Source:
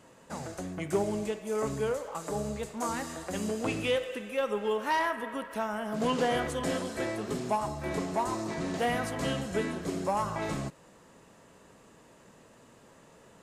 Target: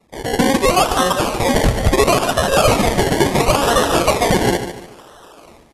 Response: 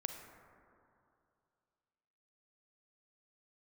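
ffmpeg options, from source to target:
-af "bandreject=f=50:t=h:w=6,bandreject=f=100:t=h:w=6,bandreject=f=150:t=h:w=6,bandreject=f=200:t=h:w=6,bandreject=f=250:t=h:w=6,bandreject=f=300:t=h:w=6,bandreject=f=350:t=h:w=6,bandreject=f=400:t=h:w=6,afftdn=nr=16:nf=-52,aemphasis=mode=production:type=cd,alimiter=limit=0.0794:level=0:latency=1:release=435,dynaudnorm=f=120:g=9:m=6.68,asetrate=48091,aresample=44100,atempo=0.917004,aresample=11025,acrusher=samples=16:mix=1:aa=0.000001:lfo=1:lforange=9.6:lforate=0.31,aresample=44100,aecho=1:1:341|682|1023|1364:0.316|0.111|0.0387|0.0136,asetrate=103194,aresample=44100,volume=1.33"

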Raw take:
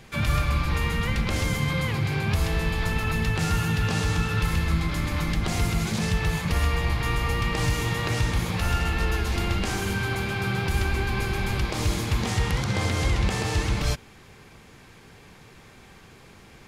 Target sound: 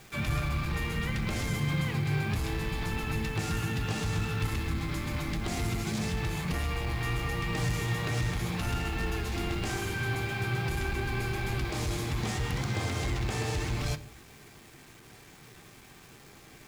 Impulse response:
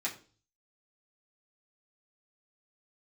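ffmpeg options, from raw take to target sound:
-filter_complex "[0:a]acrusher=bits=7:mix=0:aa=0.000001,asoftclip=type=tanh:threshold=0.126,asplit=2[s0][s1];[1:a]atrim=start_sample=2205,lowshelf=f=340:g=12[s2];[s1][s2]afir=irnorm=-1:irlink=0,volume=0.335[s3];[s0][s3]amix=inputs=2:normalize=0,volume=0.447"

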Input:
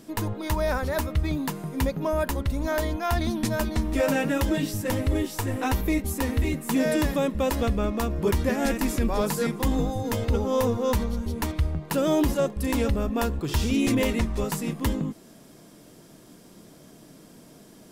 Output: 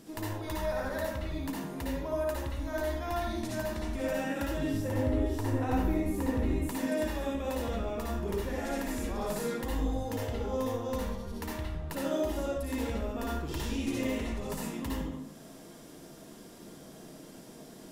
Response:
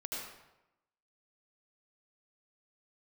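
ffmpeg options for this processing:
-filter_complex "[0:a]acompressor=threshold=0.0112:ratio=2,asettb=1/sr,asplit=3[s0][s1][s2];[s0]atrim=end=4.594[s3];[s1]atrim=start=4.59:end=6.62,asetpts=PTS-STARTPTS,afade=t=in:d=0.004:c=qsin,afade=t=out:st=2.026:d=0.004:c=qsin,tiltshelf=f=1400:g=6[s4];[s2]atrim=start=6.616[s5];[s3][s4]acrossfade=d=0.004:c1=hsin:c2=qsin[s6];[s6][s5]acrossfade=d=0.004:c1=qsin:c2=hsin[s7];[1:a]atrim=start_sample=2205,asetrate=57330,aresample=44100[s8];[s7][s8]afir=irnorm=-1:irlink=0,volume=1.33"

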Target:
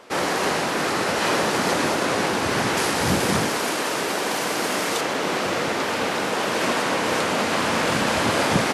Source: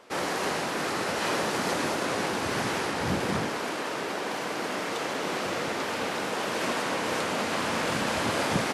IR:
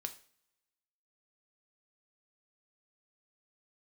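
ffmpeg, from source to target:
-filter_complex "[0:a]asettb=1/sr,asplit=3[s0][s1][s2];[s0]atrim=end=2.774[s3];[s1]atrim=start=2.77:end=5.01,asetpts=PTS-STARTPTS,afade=t=in:d=0.004:c=qsin,afade=t=out:st=2.236:d=0.004:c=qsin,highshelf=f=5800:g=10.5[s4];[s2]atrim=start=5.006[s5];[s3][s4]acrossfade=d=0.004:c1=hsin:c2=qsin[s6];[s6][s5]acrossfade=d=0.004:c1=qsin:c2=hsin,volume=2.11"

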